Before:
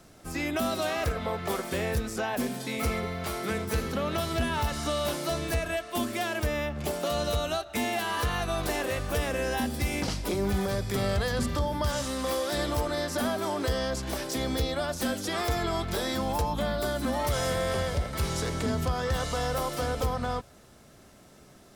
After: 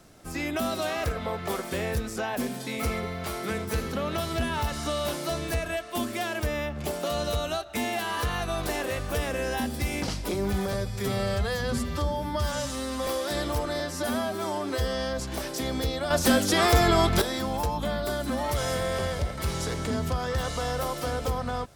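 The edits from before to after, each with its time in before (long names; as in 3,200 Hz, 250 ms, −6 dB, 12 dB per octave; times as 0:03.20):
0:10.73–0:12.29: time-stretch 1.5×
0:13.02–0:13.95: time-stretch 1.5×
0:14.86–0:15.97: clip gain +8.5 dB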